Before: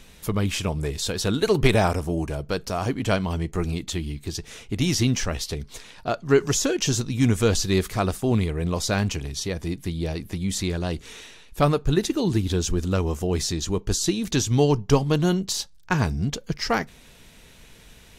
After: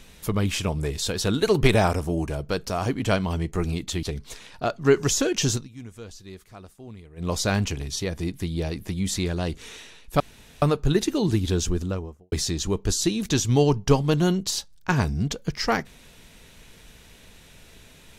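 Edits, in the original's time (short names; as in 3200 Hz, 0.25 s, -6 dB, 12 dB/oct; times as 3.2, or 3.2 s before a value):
4.03–5.47 cut
6.98–8.74 dip -20.5 dB, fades 0.14 s
11.64 insert room tone 0.42 s
12.62–13.34 studio fade out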